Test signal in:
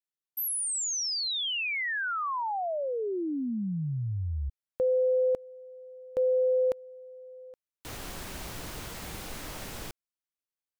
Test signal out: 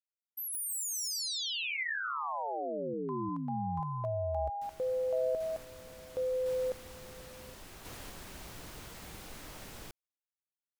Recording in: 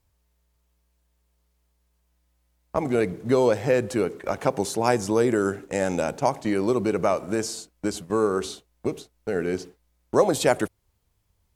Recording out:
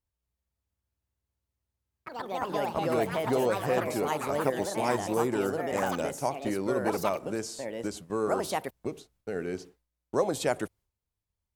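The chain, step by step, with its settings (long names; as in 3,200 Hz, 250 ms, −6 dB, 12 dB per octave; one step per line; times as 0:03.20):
delay with pitch and tempo change per echo 230 ms, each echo +4 semitones, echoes 3
noise gate with hold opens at −34 dBFS, closes at −38 dBFS, hold 134 ms, range −10 dB
level −7.5 dB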